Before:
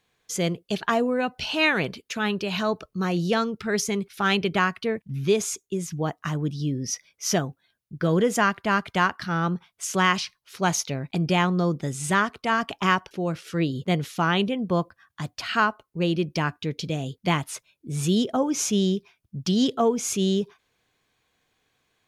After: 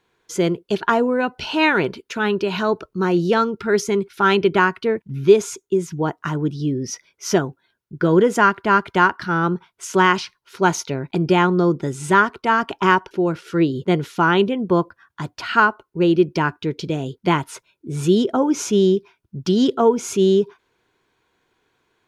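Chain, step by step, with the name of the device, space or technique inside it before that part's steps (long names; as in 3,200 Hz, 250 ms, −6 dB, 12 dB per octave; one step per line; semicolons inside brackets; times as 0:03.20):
inside a helmet (high-shelf EQ 5,600 Hz −6 dB; hollow resonant body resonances 370/950/1,400 Hz, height 10 dB, ringing for 25 ms)
level +2 dB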